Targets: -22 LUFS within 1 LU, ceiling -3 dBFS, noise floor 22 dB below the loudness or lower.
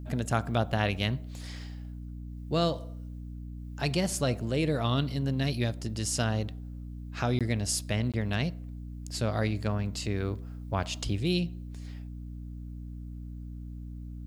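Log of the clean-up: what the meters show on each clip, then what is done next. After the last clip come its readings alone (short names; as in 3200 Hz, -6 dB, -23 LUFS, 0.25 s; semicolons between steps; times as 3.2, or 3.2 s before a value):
dropouts 2; longest dropout 17 ms; hum 60 Hz; harmonics up to 300 Hz; hum level -38 dBFS; loudness -30.5 LUFS; peak -12.5 dBFS; loudness target -22.0 LUFS
-> interpolate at 7.39/8.12, 17 ms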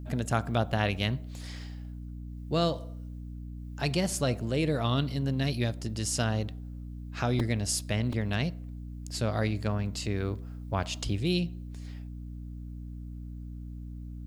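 dropouts 0; hum 60 Hz; harmonics up to 300 Hz; hum level -38 dBFS
-> de-hum 60 Hz, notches 5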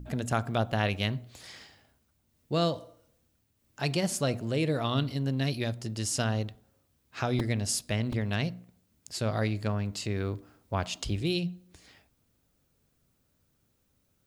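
hum none; loudness -31.0 LUFS; peak -13.0 dBFS; loudness target -22.0 LUFS
-> gain +9 dB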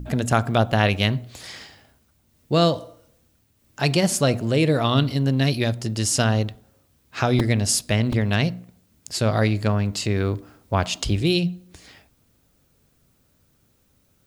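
loudness -22.0 LUFS; peak -4.0 dBFS; noise floor -64 dBFS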